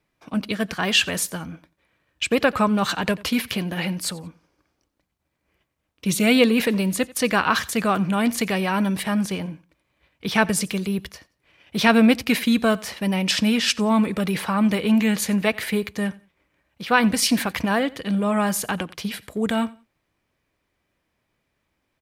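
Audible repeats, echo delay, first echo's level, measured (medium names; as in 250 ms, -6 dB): 2, 89 ms, -22.0 dB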